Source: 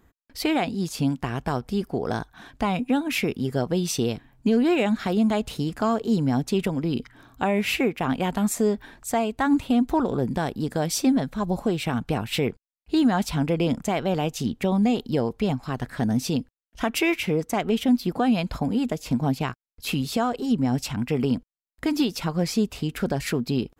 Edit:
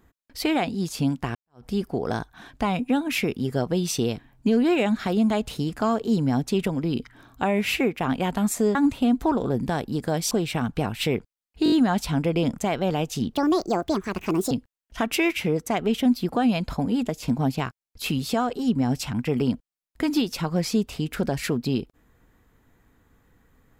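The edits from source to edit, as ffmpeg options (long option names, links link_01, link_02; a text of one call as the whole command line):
ffmpeg -i in.wav -filter_complex "[0:a]asplit=10[link_01][link_02][link_03][link_04][link_05][link_06][link_07][link_08][link_09][link_10];[link_01]atrim=end=1.35,asetpts=PTS-STARTPTS,afade=type=out:start_time=1.346:duration=0.004:curve=hsin[link_11];[link_02]atrim=start=1.35:end=8.752,asetpts=PTS-STARTPTS,afade=type=in:duration=0.29:curve=exp[link_12];[link_03]atrim=start=9.428:end=10.992[link_13];[link_04]atrim=start=11.628:end=12.982[link_14];[link_05]atrim=start=12.958:end=12.982[link_15];[link_06]atrim=start=12.958:end=12.982[link_16];[link_07]atrim=start=12.958:end=12.982[link_17];[link_08]atrim=start=12.958:end=14.574[link_18];[link_09]atrim=start=14.57:end=16.34,asetpts=PTS-STARTPTS,asetrate=66150,aresample=44100[link_19];[link_10]atrim=start=16.336[link_20];[link_11][link_12]concat=n=2:v=0:a=1[link_21];[link_21][link_13]acrossfade=duration=0.004:curve1=hsin:curve2=hsin[link_22];[link_22][link_14]acrossfade=duration=0.004:curve1=hsin:curve2=hsin[link_23];[link_23][link_15]acrossfade=duration=0.004:curve1=hsin:curve2=hsin[link_24];[link_24][link_16]acrossfade=duration=0.004:curve1=hsin:curve2=hsin[link_25];[link_25][link_17]acrossfade=duration=0.004:curve1=hsin:curve2=hsin[link_26];[link_26][link_18]acrossfade=duration=0.004:curve1=hsin:curve2=hsin[link_27];[link_27][link_19]acrossfade=duration=0.004:curve1=hsin:curve2=hsin[link_28];[link_28][link_20]acrossfade=duration=0.004:curve1=hsin:curve2=hsin" out.wav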